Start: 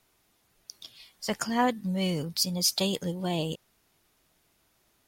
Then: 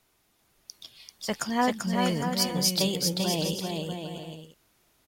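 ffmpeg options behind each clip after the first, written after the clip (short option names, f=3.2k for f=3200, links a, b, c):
-af "aecho=1:1:390|643.5|808.3|915.4|985:0.631|0.398|0.251|0.158|0.1"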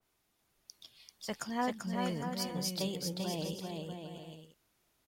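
-af "adynamicequalizer=threshold=0.00631:dfrequency=2100:dqfactor=0.7:tfrequency=2100:tqfactor=0.7:attack=5:release=100:ratio=0.375:range=2:mode=cutabove:tftype=highshelf,volume=-8.5dB"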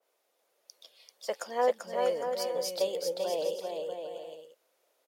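-af "highpass=f=520:t=q:w=5.9"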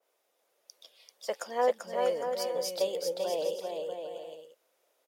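-af "bandreject=f=4.3k:w=23"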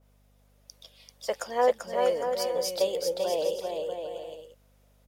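-af "aeval=exprs='val(0)+0.000562*(sin(2*PI*50*n/s)+sin(2*PI*2*50*n/s)/2+sin(2*PI*3*50*n/s)/3+sin(2*PI*4*50*n/s)/4+sin(2*PI*5*50*n/s)/5)':c=same,volume=3.5dB"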